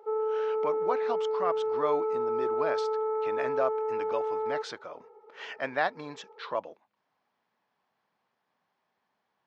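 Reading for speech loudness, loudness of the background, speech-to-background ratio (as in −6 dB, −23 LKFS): −35.0 LKFS, −30.0 LKFS, −5.0 dB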